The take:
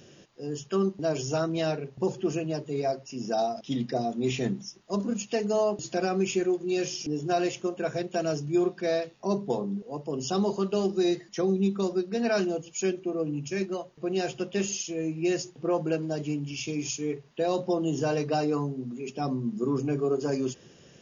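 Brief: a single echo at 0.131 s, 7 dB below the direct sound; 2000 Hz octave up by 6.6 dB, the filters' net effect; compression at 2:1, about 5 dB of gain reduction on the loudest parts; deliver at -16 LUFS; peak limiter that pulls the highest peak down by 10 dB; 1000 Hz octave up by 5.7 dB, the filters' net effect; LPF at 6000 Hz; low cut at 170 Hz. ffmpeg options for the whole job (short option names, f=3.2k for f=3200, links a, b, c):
-af "highpass=170,lowpass=6k,equalizer=f=1k:t=o:g=7.5,equalizer=f=2k:t=o:g=6.5,acompressor=threshold=-27dB:ratio=2,alimiter=level_in=2dB:limit=-24dB:level=0:latency=1,volume=-2dB,aecho=1:1:131:0.447,volume=18dB"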